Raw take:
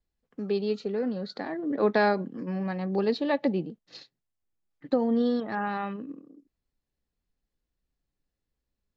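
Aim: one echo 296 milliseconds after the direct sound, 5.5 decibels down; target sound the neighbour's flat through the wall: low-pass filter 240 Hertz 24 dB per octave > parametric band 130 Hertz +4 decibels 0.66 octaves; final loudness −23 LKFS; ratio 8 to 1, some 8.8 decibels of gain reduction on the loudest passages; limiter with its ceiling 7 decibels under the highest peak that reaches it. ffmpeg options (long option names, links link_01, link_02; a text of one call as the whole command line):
ffmpeg -i in.wav -af "acompressor=threshold=-27dB:ratio=8,alimiter=level_in=1dB:limit=-24dB:level=0:latency=1,volume=-1dB,lowpass=frequency=240:width=0.5412,lowpass=frequency=240:width=1.3066,equalizer=frequency=130:width_type=o:width=0.66:gain=4,aecho=1:1:296:0.531,volume=15.5dB" out.wav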